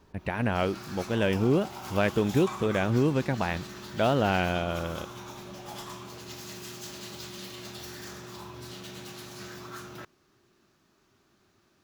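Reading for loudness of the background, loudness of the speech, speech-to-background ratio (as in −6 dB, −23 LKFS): −41.0 LKFS, −27.5 LKFS, 13.5 dB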